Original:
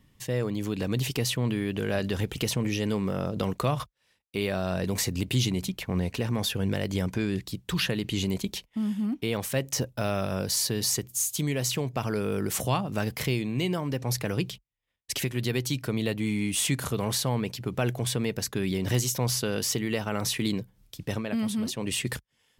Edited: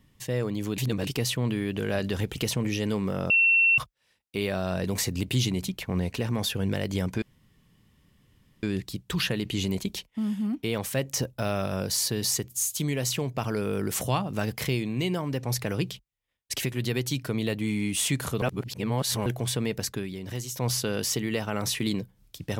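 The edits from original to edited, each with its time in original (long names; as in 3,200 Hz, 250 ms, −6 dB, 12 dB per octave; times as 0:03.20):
0:00.78–0:01.07: reverse
0:03.30–0:03.78: beep over 2,710 Hz −17 dBFS
0:07.22: splice in room tone 1.41 s
0:17.01–0:17.85: reverse
0:18.50–0:19.26: duck −8.5 dB, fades 0.18 s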